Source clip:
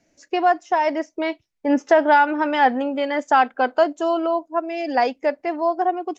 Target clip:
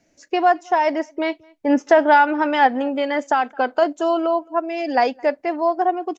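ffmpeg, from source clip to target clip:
ffmpeg -i in.wav -filter_complex "[0:a]asplit=3[link_01][link_02][link_03];[link_01]afade=type=out:start_time=2.66:duration=0.02[link_04];[link_02]acompressor=threshold=-16dB:ratio=6,afade=type=in:start_time=2.66:duration=0.02,afade=type=out:start_time=3.81:duration=0.02[link_05];[link_03]afade=type=in:start_time=3.81:duration=0.02[link_06];[link_04][link_05][link_06]amix=inputs=3:normalize=0,asplit=2[link_07][link_08];[link_08]adelay=215.7,volume=-28dB,highshelf=frequency=4000:gain=-4.85[link_09];[link_07][link_09]amix=inputs=2:normalize=0,volume=1.5dB" out.wav

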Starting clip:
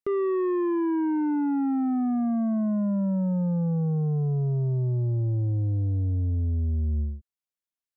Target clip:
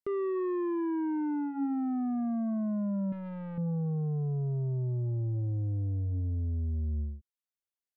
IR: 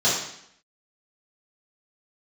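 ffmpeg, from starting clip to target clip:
-filter_complex "[0:a]bandreject=frequency=282.6:width_type=h:width=4,bandreject=frequency=565.2:width_type=h:width=4,bandreject=frequency=847.8:width_type=h:width=4,bandreject=frequency=1130.4:width_type=h:width=4,bandreject=frequency=1413:width_type=h:width=4,bandreject=frequency=1695.6:width_type=h:width=4,asettb=1/sr,asplit=3[link_01][link_02][link_03];[link_01]atrim=end=3.124[link_04];[link_02]atrim=start=3.12:end=3.58,asetpts=PTS-STARTPTS,afade=type=in:duration=0.004:curve=qsin,afade=type=out:start_time=0.456:duration=0.004:curve=qsin,aeval=exprs='(tanh(39.8*val(0)+0.15)-tanh(0.15))/39.8':channel_layout=same[link_05];[link_03]atrim=start=3.576[link_06];[link_04][link_05]acrossfade=duration=0.004:curve1=hsin:curve2=qsin[link_07];[link_07][link_06]acrossfade=duration=0.004:curve1=qsin:curve2=hsin,volume=-6dB"

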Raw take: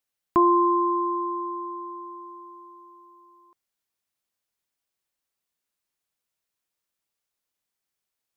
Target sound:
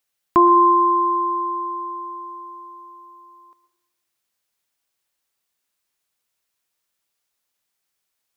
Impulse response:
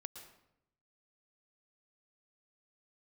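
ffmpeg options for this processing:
-filter_complex "[0:a]asplit=2[link_01][link_02];[1:a]atrim=start_sample=2205,lowshelf=frequency=470:gain=-10.5[link_03];[link_02][link_03]afir=irnorm=-1:irlink=0,volume=7.5dB[link_04];[link_01][link_04]amix=inputs=2:normalize=0"

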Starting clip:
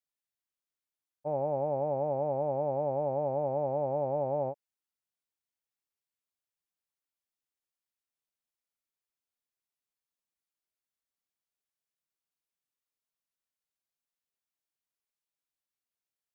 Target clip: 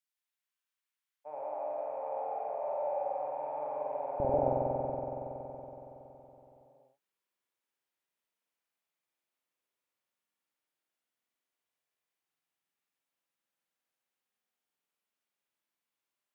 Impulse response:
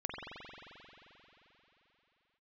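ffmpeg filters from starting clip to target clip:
-filter_complex "[0:a]asetnsamples=nb_out_samples=441:pad=0,asendcmd='4.2 highpass f 180',highpass=1200[link_01];[1:a]atrim=start_sample=2205,asetrate=41895,aresample=44100[link_02];[link_01][link_02]afir=irnorm=-1:irlink=0,volume=3dB"

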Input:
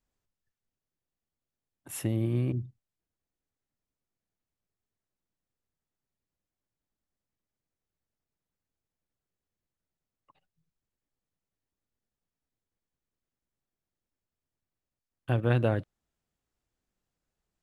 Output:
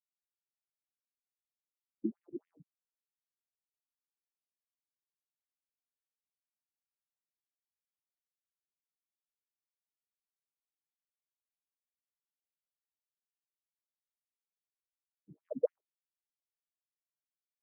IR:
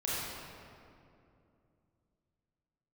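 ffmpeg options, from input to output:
-filter_complex "[0:a]afftfilt=real='re*gte(hypot(re,im),0.251)':imag='im*gte(hypot(re,im),0.251)':win_size=1024:overlap=0.75,acrossover=split=340[link_01][link_02];[link_01]acompressor=threshold=-39dB:ratio=6[link_03];[link_03][link_02]amix=inputs=2:normalize=0,afftfilt=real='re*between(b*sr/1024,240*pow(2600/240,0.5+0.5*sin(2*PI*3.7*pts/sr))/1.41,240*pow(2600/240,0.5+0.5*sin(2*PI*3.7*pts/sr))*1.41)':imag='im*between(b*sr/1024,240*pow(2600/240,0.5+0.5*sin(2*PI*3.7*pts/sr))/1.41,240*pow(2600/240,0.5+0.5*sin(2*PI*3.7*pts/sr))*1.41)':win_size=1024:overlap=0.75,volume=10dB"

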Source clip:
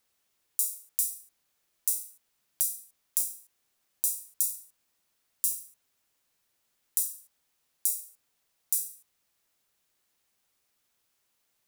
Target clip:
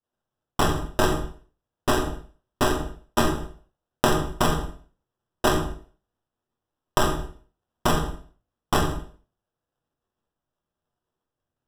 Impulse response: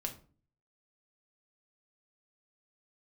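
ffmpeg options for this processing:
-filter_complex "[0:a]acrusher=samples=20:mix=1:aa=0.000001,acontrast=85,agate=range=-33dB:threshold=-55dB:ratio=3:detection=peak[link_01];[1:a]atrim=start_sample=2205,atrim=end_sample=6615,asetrate=26019,aresample=44100[link_02];[link_01][link_02]afir=irnorm=-1:irlink=0,volume=-2dB"

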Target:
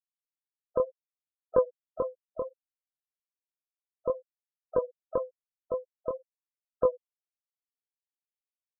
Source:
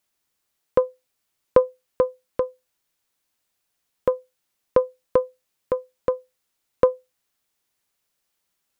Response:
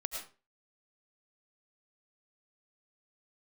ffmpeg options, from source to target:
-filter_complex "[0:a]asplit=2[link_01][link_02];[link_02]asetrate=55563,aresample=44100,atempo=0.793701,volume=-15dB[link_03];[link_01][link_03]amix=inputs=2:normalize=0,flanger=delay=19.5:depth=6:speed=1.9,afftfilt=real='re*gte(hypot(re,im),0.0398)':imag='im*gte(hypot(re,im),0.0398)':win_size=1024:overlap=0.75,volume=-5.5dB"

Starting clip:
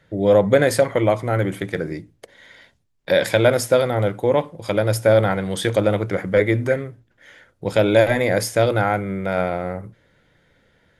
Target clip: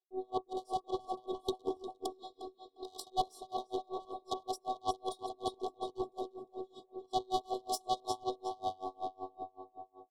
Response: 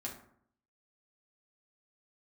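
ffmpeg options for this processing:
-filter_complex "[0:a]agate=range=-33dB:threshold=-46dB:ratio=3:detection=peak,areverse,acompressor=threshold=-28dB:ratio=10,areverse,afftfilt=real='hypot(re,im)*cos(PI*b)':imag='0':win_size=512:overlap=0.75,highpass=250,equalizer=frequency=1500:width_type=q:width=4:gain=-10,equalizer=frequency=2300:width_type=q:width=4:gain=-5,equalizer=frequency=6100:width_type=q:width=4:gain=-9,lowpass=frequency=8400:width=0.5412,lowpass=frequency=8400:width=1.3066,asplit=2[link_01][link_02];[link_02]adelay=385,lowpass=frequency=3400:poles=1,volume=-3dB,asplit=2[link_03][link_04];[link_04]adelay=385,lowpass=frequency=3400:poles=1,volume=0.55,asplit=2[link_05][link_06];[link_06]adelay=385,lowpass=frequency=3400:poles=1,volume=0.55,asplit=2[link_07][link_08];[link_08]adelay=385,lowpass=frequency=3400:poles=1,volume=0.55,asplit=2[link_09][link_10];[link_10]adelay=385,lowpass=frequency=3400:poles=1,volume=0.55,asplit=2[link_11][link_12];[link_12]adelay=385,lowpass=frequency=3400:poles=1,volume=0.55,asplit=2[link_13][link_14];[link_14]adelay=385,lowpass=frequency=3400:poles=1,volume=0.55,asplit=2[link_15][link_16];[link_16]adelay=385,lowpass=frequency=3400:poles=1,volume=0.55[link_17];[link_03][link_05][link_07][link_09][link_11][link_13][link_15][link_17]amix=inputs=8:normalize=0[link_18];[link_01][link_18]amix=inputs=2:normalize=0,aeval=exprs='0.075*(cos(1*acos(clip(val(0)/0.075,-1,1)))-cos(1*PI/2))+0.00211*(cos(2*acos(clip(val(0)/0.075,-1,1)))-cos(2*PI/2))+0.00133*(cos(3*acos(clip(val(0)/0.075,-1,1)))-cos(3*PI/2))+0.0299*(cos(6*acos(clip(val(0)/0.075,-1,1)))-cos(6*PI/2))+0.0211*(cos(8*acos(clip(val(0)/0.075,-1,1)))-cos(8*PI/2))':channel_layout=same,asetrate=48000,aresample=44100,asuperstop=centerf=1900:order=20:qfactor=0.95,aeval=exprs='val(0)*pow(10,-31*(0.5-0.5*cos(2*PI*5.3*n/s))/20)':channel_layout=same,volume=7dB"

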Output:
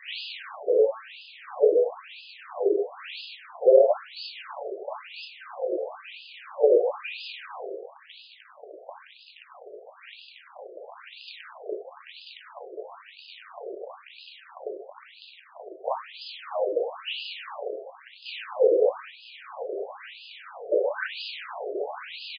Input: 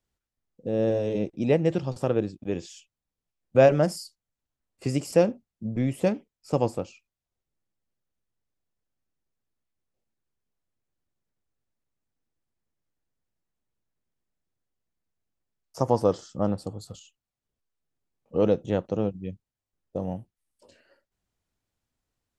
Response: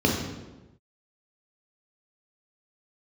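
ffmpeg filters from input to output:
-filter_complex "[0:a]aeval=exprs='val(0)+0.5*0.075*sgn(val(0))':channel_layout=same,acrossover=split=160|1100|2700[link_01][link_02][link_03][link_04];[link_01]alimiter=level_in=7dB:limit=-24dB:level=0:latency=1,volume=-7dB[link_05];[link_05][link_02][link_03][link_04]amix=inputs=4:normalize=0,acrossover=split=250|2100[link_06][link_07][link_08];[link_07]adelay=100[link_09];[link_06]adelay=130[link_10];[link_10][link_09][link_08]amix=inputs=3:normalize=0[link_11];[1:a]atrim=start_sample=2205[link_12];[link_11][link_12]afir=irnorm=-1:irlink=0,acompressor=threshold=-14dB:ratio=2.5,afftfilt=real='re*between(b*sr/1024,480*pow(3600/480,0.5+0.5*sin(2*PI*1*pts/sr))/1.41,480*pow(3600/480,0.5+0.5*sin(2*PI*1*pts/sr))*1.41)':imag='im*between(b*sr/1024,480*pow(3600/480,0.5+0.5*sin(2*PI*1*pts/sr))/1.41,480*pow(3600/480,0.5+0.5*sin(2*PI*1*pts/sr))*1.41)':win_size=1024:overlap=0.75,volume=-4dB"

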